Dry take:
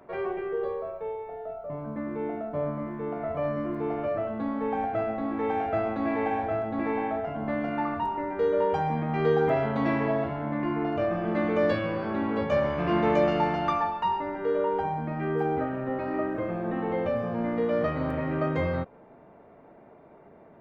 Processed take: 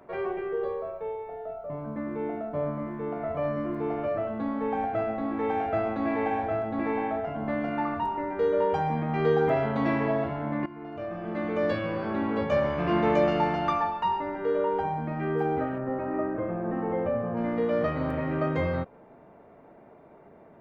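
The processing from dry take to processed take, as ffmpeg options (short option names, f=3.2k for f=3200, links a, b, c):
-filter_complex "[0:a]asettb=1/sr,asplit=3[a][b][c];[a]atrim=end=15.784[d];[b]atrim=start=15.78:end=17.37,asetpts=PTS-STARTPTS,afade=t=in:d=0.004:c=qsin,afade=t=out:st=1.586:d=0.004:c=qsin,lowpass=1.7k[e];[c]atrim=start=17.366[f];[d][e]acrossfade=d=0.004:c1=hsin:c2=qsin[g];[g][f]acrossfade=d=0.004:c1=qsin:c2=hsin,asplit=2[h][i];[h]atrim=end=10.66,asetpts=PTS-STARTPTS,afade=t=out:st=10.656:d=0.004:c=hsin:silence=0.149624[j];[i]atrim=start=10.66,asetpts=PTS-STARTPTS,afade=t=in:d=1.41:silence=0.149624[k];[j][k]concat=n=2:v=0:a=1"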